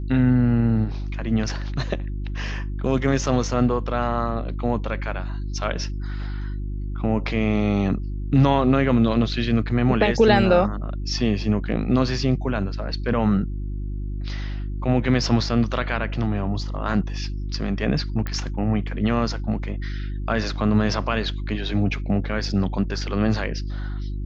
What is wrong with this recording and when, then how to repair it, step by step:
hum 50 Hz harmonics 7 -28 dBFS
18.27 pop -15 dBFS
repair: de-click; de-hum 50 Hz, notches 7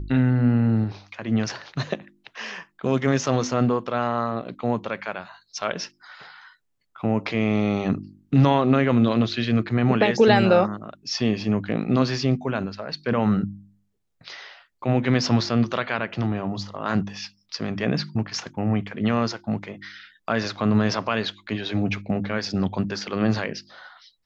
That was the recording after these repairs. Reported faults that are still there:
none

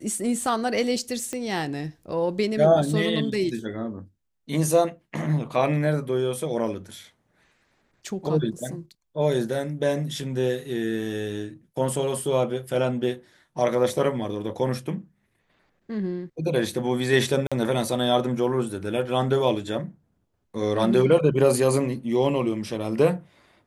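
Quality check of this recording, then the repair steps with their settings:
1.33 pop -17 dBFS
17.47–17.52 gap 46 ms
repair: de-click; interpolate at 17.47, 46 ms

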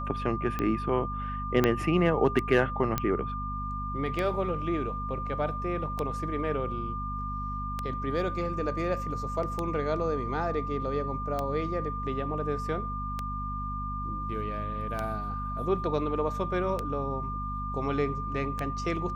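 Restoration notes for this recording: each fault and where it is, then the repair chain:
hum 50 Hz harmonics 5 -36 dBFS
tick 33 1/3 rpm -17 dBFS
tone 1200 Hz -34 dBFS
1.64 pop -10 dBFS
2.98 pop -12 dBFS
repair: de-click; de-hum 50 Hz, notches 5; notch 1200 Hz, Q 30

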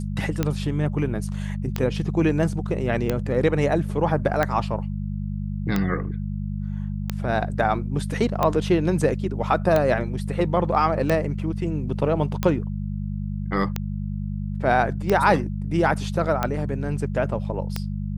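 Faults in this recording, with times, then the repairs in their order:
hum 50 Hz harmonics 4 -28 dBFS
tick 45 rpm -9 dBFS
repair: de-click; de-hum 50 Hz, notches 4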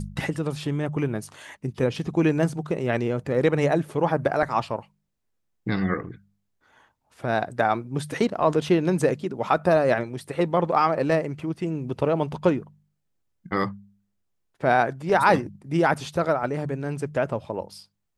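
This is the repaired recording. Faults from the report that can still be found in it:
none

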